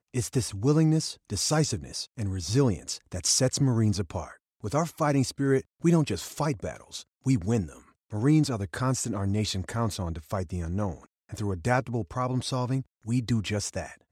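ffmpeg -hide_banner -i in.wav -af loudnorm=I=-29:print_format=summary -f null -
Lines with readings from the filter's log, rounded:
Input Integrated:    -28.2 LUFS
Input True Peak:      -9.4 dBTP
Input LRA:             3.6 LU
Input Threshold:     -38.5 LUFS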